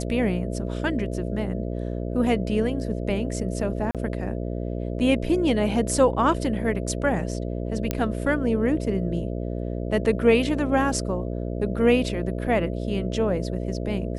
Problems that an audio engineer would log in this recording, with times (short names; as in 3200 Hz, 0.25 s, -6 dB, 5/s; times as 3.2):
buzz 60 Hz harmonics 11 -29 dBFS
3.91–3.95 gap 37 ms
7.91 pop -9 dBFS